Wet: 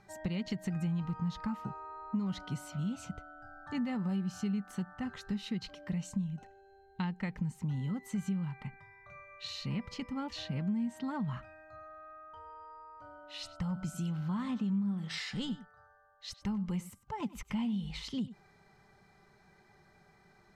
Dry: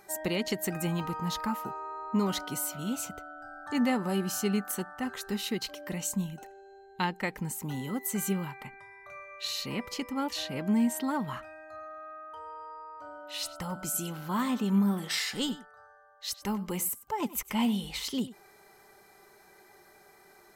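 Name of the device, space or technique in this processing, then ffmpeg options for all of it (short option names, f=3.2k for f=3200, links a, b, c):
jukebox: -af "lowpass=5k,lowshelf=f=240:t=q:w=1.5:g=11,acompressor=threshold=-26dB:ratio=4,volume=-6dB"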